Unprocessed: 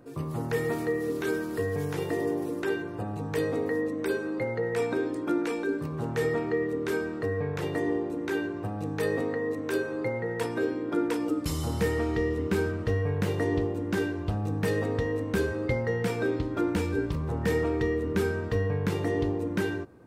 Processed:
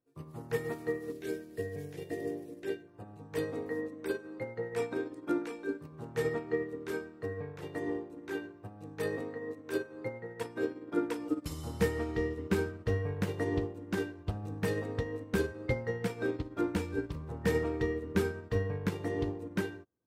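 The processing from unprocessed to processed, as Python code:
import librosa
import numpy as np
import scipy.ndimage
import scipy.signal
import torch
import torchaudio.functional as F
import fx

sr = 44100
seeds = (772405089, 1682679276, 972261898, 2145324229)

y = fx.band_shelf(x, sr, hz=1100.0, db=-11.5, octaves=1.0, at=(1.12, 2.88))
y = fx.upward_expand(y, sr, threshold_db=-45.0, expansion=2.5)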